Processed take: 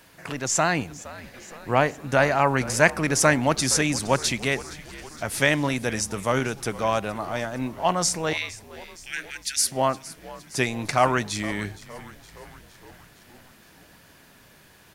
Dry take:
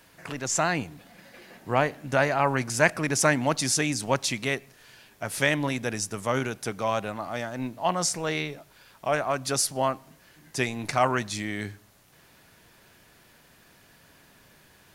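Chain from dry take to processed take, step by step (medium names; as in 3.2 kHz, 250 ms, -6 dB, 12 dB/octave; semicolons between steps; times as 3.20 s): 8.33–9.72 s: steep high-pass 1.6 kHz 72 dB/octave; frequency-shifting echo 465 ms, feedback 62%, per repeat -76 Hz, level -18 dB; trim +3 dB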